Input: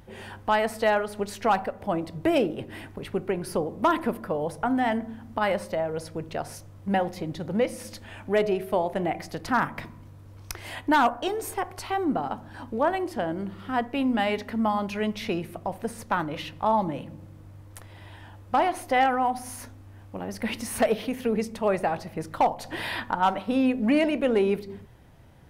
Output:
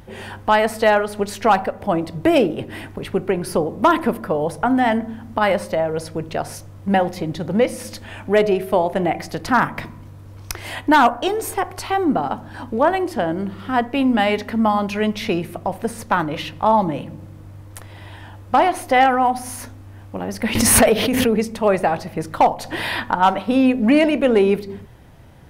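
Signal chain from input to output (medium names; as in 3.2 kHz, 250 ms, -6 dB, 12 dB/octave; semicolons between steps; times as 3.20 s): 20.55–21.30 s: swell ahead of each attack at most 28 dB/s; trim +7.5 dB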